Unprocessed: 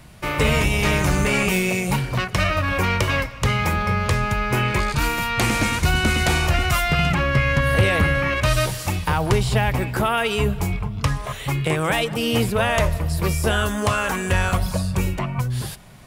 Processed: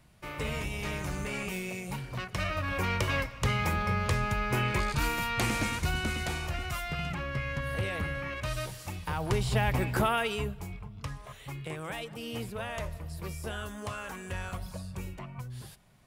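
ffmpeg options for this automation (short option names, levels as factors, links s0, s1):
-af "volume=1.26,afade=t=in:st=1.96:d=1.26:silence=0.421697,afade=t=out:st=5.25:d=1.13:silence=0.446684,afade=t=in:st=8.97:d=1:silence=0.316228,afade=t=out:st=9.97:d=0.59:silence=0.251189"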